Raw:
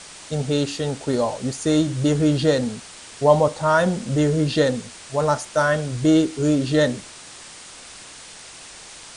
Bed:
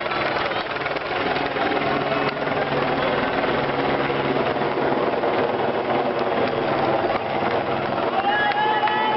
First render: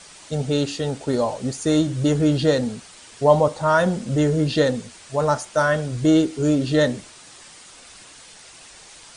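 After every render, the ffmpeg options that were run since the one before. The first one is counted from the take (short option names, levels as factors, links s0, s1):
-af "afftdn=nr=6:nf=-42"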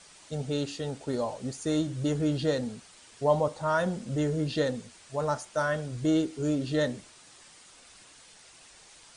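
-af "volume=0.355"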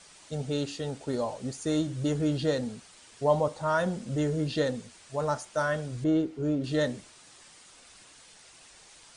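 -filter_complex "[0:a]asettb=1/sr,asplit=3[s0][s1][s2];[s0]atrim=end=6.044[s3];[s1]atrim=start=6.04:end=6.64,asetpts=PTS-STARTPTS,afade=t=in:d=0.004:c=qsin,afade=t=out:st=0.596:d=0.004:c=qsin,lowpass=f=1400:p=1[s4];[s2]atrim=start=6.636[s5];[s3][s4]acrossfade=d=0.004:c1=hsin:c2=qsin[s6];[s6][s5]acrossfade=d=0.004:c1=qsin:c2=hsin"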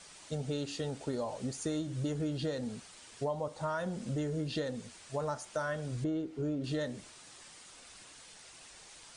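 -af "acompressor=threshold=0.0251:ratio=6"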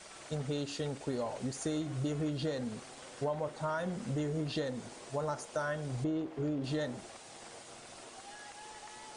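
-filter_complex "[1:a]volume=0.0282[s0];[0:a][s0]amix=inputs=2:normalize=0"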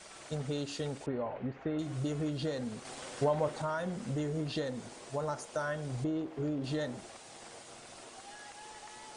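-filter_complex "[0:a]asettb=1/sr,asplit=3[s0][s1][s2];[s0]atrim=end=1.064[s3];[s1]atrim=start=1.06:end=1.79,asetpts=PTS-STARTPTS,afade=t=in:d=0.004:c=qsin,afade=t=out:st=0.726:d=0.004:c=qsin,lowpass=f=2500:w=0.5412,lowpass=f=2500:w=1.3066[s4];[s2]atrim=start=1.786[s5];[s3][s4]acrossfade=d=0.004:c1=hsin:c2=qsin[s6];[s6][s5]acrossfade=d=0.004:c1=qsin:c2=hsin,asettb=1/sr,asplit=3[s7][s8][s9];[s7]atrim=end=2.854[s10];[s8]atrim=start=2.85:end=3.62,asetpts=PTS-STARTPTS,afade=t=in:d=0.004:c=qsin,afade=t=out:st=0.766:d=0.004:c=qsin,acontrast=27[s11];[s9]atrim=start=3.616[s12];[s10][s11]acrossfade=d=0.004:c1=hsin:c2=qsin[s13];[s13][s12]acrossfade=d=0.004:c1=qsin:c2=hsin"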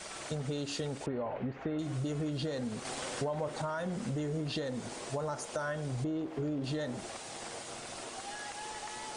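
-filter_complex "[0:a]asplit=2[s0][s1];[s1]alimiter=level_in=2:limit=0.0631:level=0:latency=1,volume=0.501,volume=1.26[s2];[s0][s2]amix=inputs=2:normalize=0,acompressor=threshold=0.0178:ratio=2.5"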